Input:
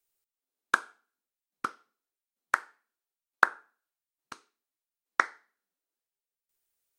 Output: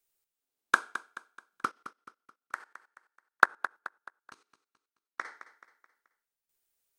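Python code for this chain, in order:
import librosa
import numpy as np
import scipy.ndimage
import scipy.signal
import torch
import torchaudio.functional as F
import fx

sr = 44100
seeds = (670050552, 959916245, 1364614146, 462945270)

y = fx.level_steps(x, sr, step_db=17, at=(1.69, 5.25))
y = fx.echo_feedback(y, sr, ms=215, feedback_pct=42, wet_db=-13.0)
y = F.gain(torch.from_numpy(y), 1.0).numpy()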